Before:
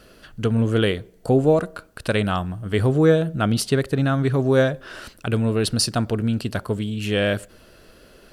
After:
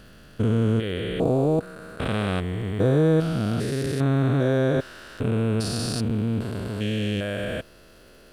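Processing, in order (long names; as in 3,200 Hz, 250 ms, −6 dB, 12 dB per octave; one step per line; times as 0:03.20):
spectrum averaged block by block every 400 ms
surface crackle 130 per second −46 dBFS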